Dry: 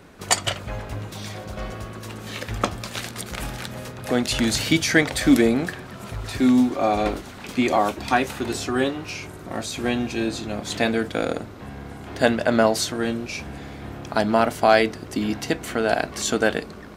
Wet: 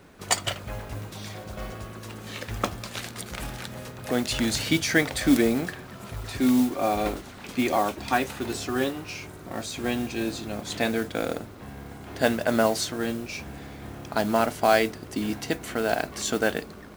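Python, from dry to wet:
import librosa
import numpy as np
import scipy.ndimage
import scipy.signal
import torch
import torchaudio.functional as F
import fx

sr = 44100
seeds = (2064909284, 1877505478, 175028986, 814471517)

y = fx.mod_noise(x, sr, seeds[0], snr_db=19)
y = y * 10.0 ** (-4.0 / 20.0)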